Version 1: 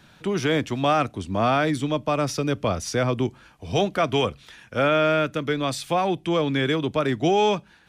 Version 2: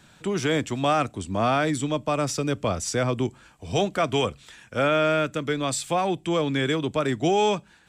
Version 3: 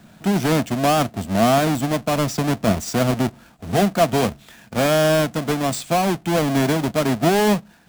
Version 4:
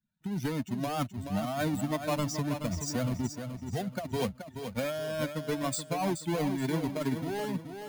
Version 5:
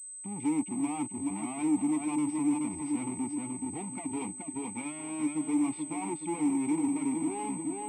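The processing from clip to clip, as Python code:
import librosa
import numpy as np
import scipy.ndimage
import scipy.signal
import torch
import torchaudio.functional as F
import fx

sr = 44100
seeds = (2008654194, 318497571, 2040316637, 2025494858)

y1 = fx.peak_eq(x, sr, hz=7700.0, db=13.5, octaves=0.3)
y1 = y1 * librosa.db_to_amplitude(-1.5)
y2 = fx.halfwave_hold(y1, sr)
y2 = fx.small_body(y2, sr, hz=(210.0, 670.0), ring_ms=35, db=10)
y2 = y2 * librosa.db_to_amplitude(-2.5)
y3 = fx.bin_expand(y2, sr, power=2.0)
y3 = fx.over_compress(y3, sr, threshold_db=-25.0, ratio=-1.0)
y3 = fx.echo_feedback(y3, sr, ms=427, feedback_pct=35, wet_db=-8)
y3 = y3 * librosa.db_to_amplitude(-6.0)
y4 = fx.leveller(y3, sr, passes=5)
y4 = fx.vowel_filter(y4, sr, vowel='u')
y4 = fx.pwm(y4, sr, carrier_hz=8200.0)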